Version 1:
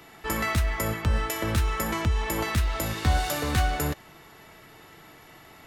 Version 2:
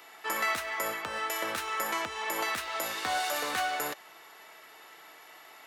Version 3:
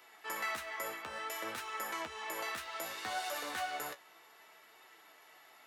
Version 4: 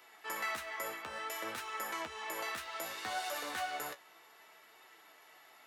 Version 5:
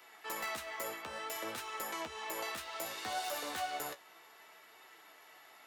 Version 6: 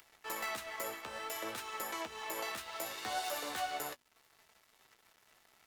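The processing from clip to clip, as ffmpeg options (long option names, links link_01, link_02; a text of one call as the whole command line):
ffmpeg -i in.wav -filter_complex "[0:a]highpass=590,acrossover=split=890|2200[link_01][link_02][link_03];[link_03]alimiter=level_in=1.5dB:limit=-24dB:level=0:latency=1:release=59,volume=-1.5dB[link_04];[link_01][link_02][link_04]amix=inputs=3:normalize=0" out.wav
ffmpeg -i in.wav -af "flanger=delay=7.5:depth=9.2:regen=40:speed=0.62:shape=triangular,volume=-4dB" out.wav
ffmpeg -i in.wav -af anull out.wav
ffmpeg -i in.wav -filter_complex "[0:a]acrossover=split=370|1200|2200[link_01][link_02][link_03][link_04];[link_03]acompressor=threshold=-56dB:ratio=6[link_05];[link_04]aeval=exprs='(mod(59.6*val(0)+1,2)-1)/59.6':channel_layout=same[link_06];[link_01][link_02][link_05][link_06]amix=inputs=4:normalize=0,volume=1.5dB" out.wav
ffmpeg -i in.wav -af "acompressor=mode=upward:threshold=-52dB:ratio=2.5,aeval=exprs='sgn(val(0))*max(abs(val(0))-0.00188,0)':channel_layout=same,bandreject=frequency=81.89:width_type=h:width=4,bandreject=frequency=163.78:width_type=h:width=4,bandreject=frequency=245.67:width_type=h:width=4,volume=1.5dB" out.wav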